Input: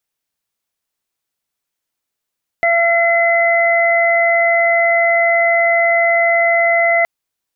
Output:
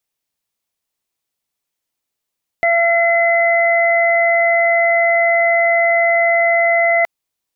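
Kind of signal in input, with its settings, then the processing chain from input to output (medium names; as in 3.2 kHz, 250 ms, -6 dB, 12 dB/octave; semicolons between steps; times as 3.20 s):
steady additive tone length 4.42 s, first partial 679 Hz, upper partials -14/-0.5 dB, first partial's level -13 dB
peaking EQ 1.5 kHz -4 dB 0.46 oct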